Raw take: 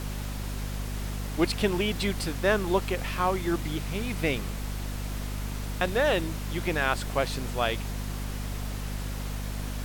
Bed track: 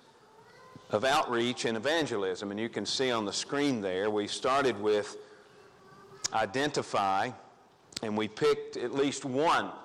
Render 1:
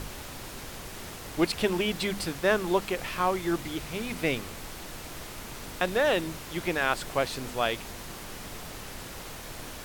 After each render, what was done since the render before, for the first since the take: notches 50/100/150/200/250 Hz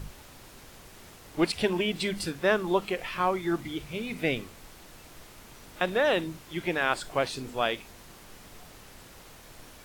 noise print and reduce 9 dB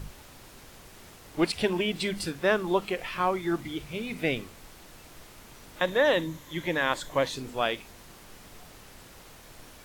5.79–7.36 ripple EQ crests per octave 1.1, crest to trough 7 dB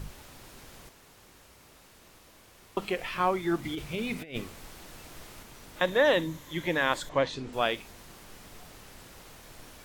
0.89–2.77 room tone; 3.63–5.43 negative-ratio compressor -33 dBFS, ratio -0.5; 7.09–7.53 air absorption 97 m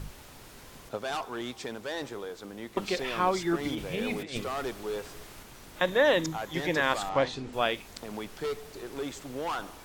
add bed track -7 dB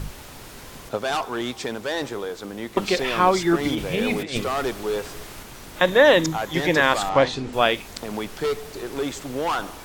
gain +8.5 dB; limiter -3 dBFS, peak gain reduction 1.5 dB

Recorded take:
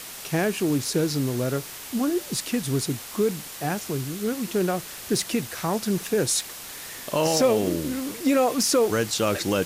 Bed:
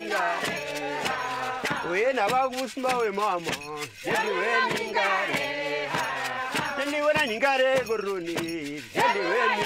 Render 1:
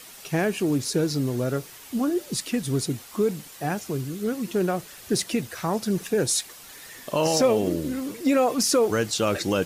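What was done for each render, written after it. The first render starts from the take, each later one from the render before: denoiser 8 dB, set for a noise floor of -39 dBFS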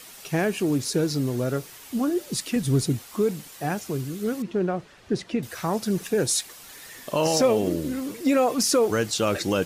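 2.56–2.99 low shelf 190 Hz +8 dB; 4.42–5.43 tape spacing loss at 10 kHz 22 dB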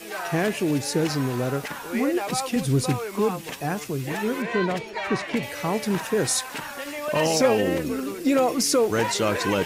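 add bed -6 dB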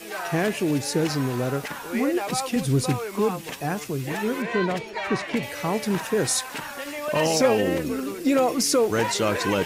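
nothing audible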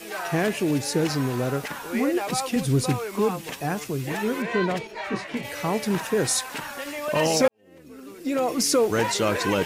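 4.87–5.45 detuned doubles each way 27 cents; 7.48–8.63 fade in quadratic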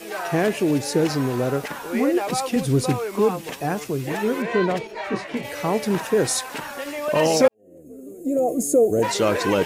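7.54–9.03 spectral gain 770–6300 Hz -22 dB; bell 480 Hz +4.5 dB 2 oct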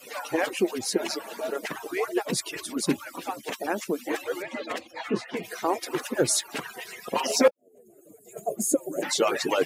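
median-filter separation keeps percussive; HPF 150 Hz 12 dB/oct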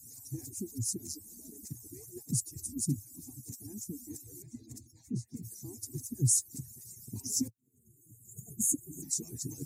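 elliptic band-stop 240–6700 Hz, stop band 40 dB; resonant low shelf 150 Hz +9.5 dB, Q 3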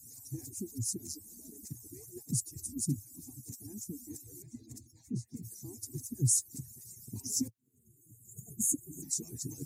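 gain -1 dB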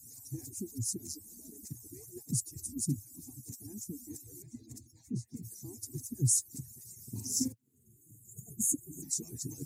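6.94–8.2 doubler 46 ms -4.5 dB

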